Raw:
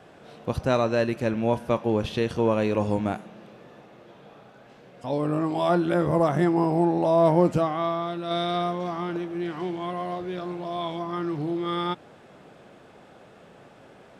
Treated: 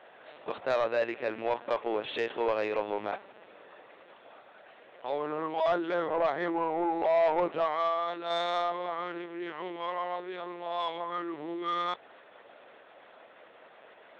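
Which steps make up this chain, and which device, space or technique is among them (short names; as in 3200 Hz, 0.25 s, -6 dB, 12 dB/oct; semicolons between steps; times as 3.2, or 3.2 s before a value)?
talking toy (LPC vocoder at 8 kHz pitch kept; HPF 510 Hz 12 dB/oct; bell 1900 Hz +4 dB 0.3 oct; soft clip -19.5 dBFS, distortion -15 dB)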